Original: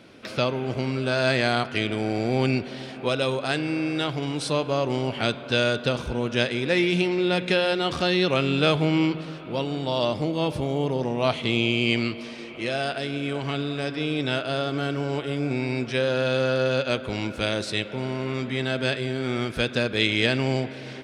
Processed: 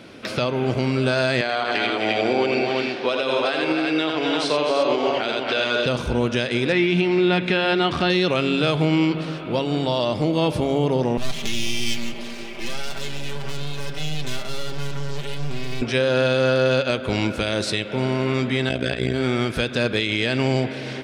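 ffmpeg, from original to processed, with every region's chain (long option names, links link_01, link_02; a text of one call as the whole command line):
ffmpeg -i in.wav -filter_complex "[0:a]asettb=1/sr,asplit=3[link_01][link_02][link_03];[link_01]atrim=end=1.414[link_04];[link_02]atrim=start=1.41:end=5.86,asetpts=PTS-STARTPTS,afade=type=in:duration=0.004:curve=qsin,afade=type=out:start_time=4.446:duration=0.004:curve=qsin,highpass=330,lowpass=5000,aecho=1:1:82|251|268|342:0.596|0.299|0.282|0.531,atrim=end_sample=196245[link_05];[link_03]atrim=start=5.856[link_06];[link_04][link_05]acrossfade=duration=0.004:curve1=hsin:curve2=qsin[link_07];[link_07][link_06]acrossfade=duration=0.004:curve1=qsin:curve2=hsin,asettb=1/sr,asplit=3[link_08][link_09][link_10];[link_08]atrim=end=6.724[link_11];[link_09]atrim=start=6.72:end=8.1,asetpts=PTS-STARTPTS,afade=type=in:duration=0.004:curve=qsin,afade=type=out:start_time=1.376:duration=0.004:curve=qsin,acrossover=split=3900[link_12][link_13];[link_13]acompressor=threshold=-50dB:ratio=4:attack=1:release=60[link_14];[link_12][link_14]amix=inputs=2:normalize=0,highpass=54,equalizer=frequency=510:width=7.8:gain=-11[link_15];[link_10]atrim=start=8.096[link_16];[link_11][link_15]acrossfade=duration=0.004:curve1=hsin:curve2=qsin[link_17];[link_17][link_16]acrossfade=duration=0.004:curve1=qsin:curve2=hsin,asettb=1/sr,asplit=3[link_18][link_19][link_20];[link_18]atrim=end=11.174[link_21];[link_19]atrim=start=11.17:end=15.82,asetpts=PTS-STARTPTS,afade=type=in:duration=0.004:curve=qsin,afade=type=out:start_time=4.646:duration=0.004:curve=qsin,aeval=exprs='max(val(0),0)':channel_layout=same,acrossover=split=170|3000[link_22][link_23][link_24];[link_23]acompressor=threshold=-40dB:ratio=5:attack=3.2:release=140:knee=2.83:detection=peak[link_25];[link_22][link_25][link_24]amix=inputs=3:normalize=0,aecho=1:1:5.1:0.7,atrim=end_sample=205065[link_26];[link_20]atrim=start=15.816[link_27];[link_21][link_26]acrossfade=duration=0.004:curve1=hsin:curve2=qsin[link_28];[link_28][link_27]acrossfade=duration=0.004:curve1=qsin:curve2=hsin,asettb=1/sr,asplit=3[link_29][link_30][link_31];[link_29]atrim=end=18.694[link_32];[link_30]atrim=start=18.69:end=19.14,asetpts=PTS-STARTPTS,afade=type=in:duration=0.004:curve=qsin,afade=type=out:start_time=0.446:duration=0.004:curve=qsin,bandreject=frequency=4200:width=17,aecho=1:1:7.3:0.98,atrim=end_sample=19845,tremolo=f=58:d=0.919[link_33];[link_31]atrim=start=19.136[link_34];[link_32][link_33]acrossfade=duration=0.004:curve1=hsin:curve2=qsin[link_35];[link_35][link_34]acrossfade=duration=0.004:curve1=qsin:curve2=hsin,alimiter=limit=-17dB:level=0:latency=1:release=158,acontrast=76,bandreject=frequency=68.48:width_type=h:width=4,bandreject=frequency=136.96:width_type=h:width=4" out.wav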